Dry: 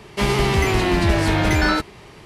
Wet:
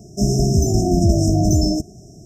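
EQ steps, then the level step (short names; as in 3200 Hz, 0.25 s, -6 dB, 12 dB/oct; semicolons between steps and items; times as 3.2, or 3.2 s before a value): brick-wall FIR band-stop 740–5100 Hz; low shelf 66 Hz -11 dB; fixed phaser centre 2500 Hz, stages 8; +8.5 dB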